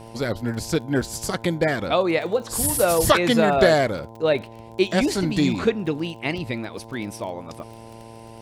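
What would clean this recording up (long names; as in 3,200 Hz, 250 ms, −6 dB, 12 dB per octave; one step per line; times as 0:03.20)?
click removal
hum removal 113.4 Hz, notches 9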